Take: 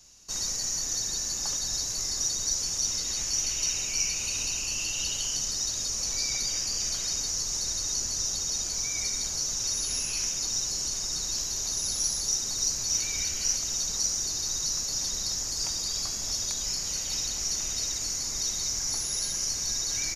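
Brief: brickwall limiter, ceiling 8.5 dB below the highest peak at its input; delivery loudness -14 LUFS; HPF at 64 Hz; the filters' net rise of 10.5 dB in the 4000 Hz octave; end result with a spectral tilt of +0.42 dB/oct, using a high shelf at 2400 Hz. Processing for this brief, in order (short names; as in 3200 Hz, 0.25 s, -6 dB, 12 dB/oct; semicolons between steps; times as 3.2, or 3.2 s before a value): HPF 64 Hz; high shelf 2400 Hz +7 dB; bell 4000 Hz +7 dB; gain +6 dB; limiter -7.5 dBFS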